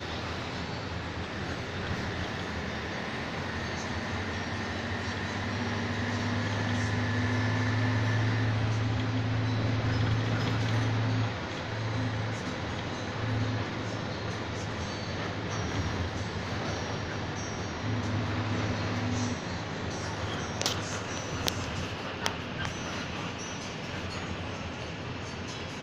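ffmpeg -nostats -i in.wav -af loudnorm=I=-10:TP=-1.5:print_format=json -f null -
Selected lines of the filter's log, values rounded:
"input_i" : "-32.5",
"input_tp" : "-9.2",
"input_lra" : "6.0",
"input_thresh" : "-42.5",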